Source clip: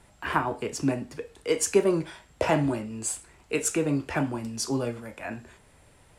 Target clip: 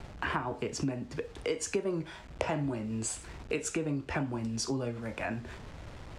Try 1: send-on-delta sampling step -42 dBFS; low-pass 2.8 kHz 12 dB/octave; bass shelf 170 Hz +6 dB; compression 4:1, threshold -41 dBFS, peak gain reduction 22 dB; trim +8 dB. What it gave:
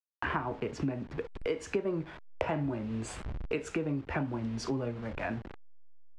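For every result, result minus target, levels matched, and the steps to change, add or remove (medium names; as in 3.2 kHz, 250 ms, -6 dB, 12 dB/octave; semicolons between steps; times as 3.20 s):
8 kHz band -11.0 dB; send-on-delta sampling: distortion +12 dB
change: low-pass 6.8 kHz 12 dB/octave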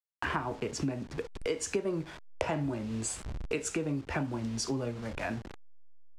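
send-on-delta sampling: distortion +12 dB
change: send-on-delta sampling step -53 dBFS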